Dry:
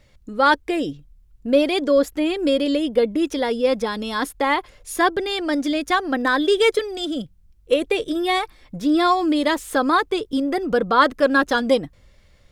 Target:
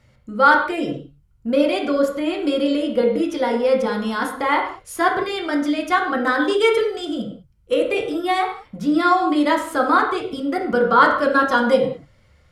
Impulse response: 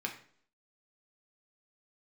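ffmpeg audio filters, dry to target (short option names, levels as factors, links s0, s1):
-filter_complex "[1:a]atrim=start_sample=2205,afade=t=out:st=0.17:d=0.01,atrim=end_sample=7938,asetrate=26019,aresample=44100[s0];[0:a][s0]afir=irnorm=-1:irlink=0,volume=0.631"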